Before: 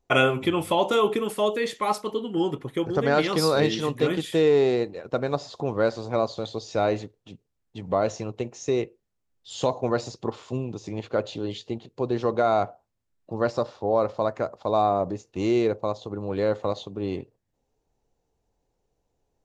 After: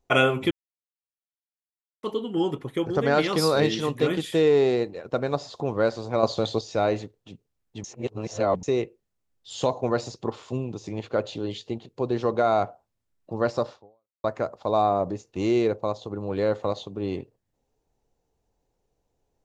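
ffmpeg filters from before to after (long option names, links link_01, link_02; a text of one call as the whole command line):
ffmpeg -i in.wav -filter_complex "[0:a]asplit=8[link_01][link_02][link_03][link_04][link_05][link_06][link_07][link_08];[link_01]atrim=end=0.51,asetpts=PTS-STARTPTS,afade=type=out:start_time=0.506:duration=0.004:curve=hsin[link_09];[link_02]atrim=start=0.51:end=2.03,asetpts=PTS-STARTPTS,volume=0[link_10];[link_03]atrim=start=2.03:end=6.232,asetpts=PTS-STARTPTS,afade=type=in:duration=0.004:curve=hsin[link_11];[link_04]atrim=start=6.228:end=6.612,asetpts=PTS-STARTPTS,volume=6dB[link_12];[link_05]atrim=start=6.608:end=7.842[link_13];[link_06]atrim=start=7.838:end=8.632,asetpts=PTS-STARTPTS,areverse[link_14];[link_07]atrim=start=8.628:end=14.24,asetpts=PTS-STARTPTS,afade=type=out:start_time=5.102:duration=0.51:curve=exp[link_15];[link_08]atrim=start=14.24,asetpts=PTS-STARTPTS,afade=type=in:duration=0.004:curve=hsin[link_16];[link_09][link_10][link_11]concat=n=3:v=0:a=1[link_17];[link_17][link_12]acrossfade=duration=0.004:curve1=hsin:curve2=hsin[link_18];[link_18][link_13]acrossfade=duration=0.004:curve1=hsin:curve2=hsin[link_19];[link_19][link_14]acrossfade=duration=0.004:curve1=hsin:curve2=hsin[link_20];[link_15][link_16]concat=n=2:v=0:a=1[link_21];[link_20][link_21]acrossfade=duration=0.004:curve1=hsin:curve2=hsin" out.wav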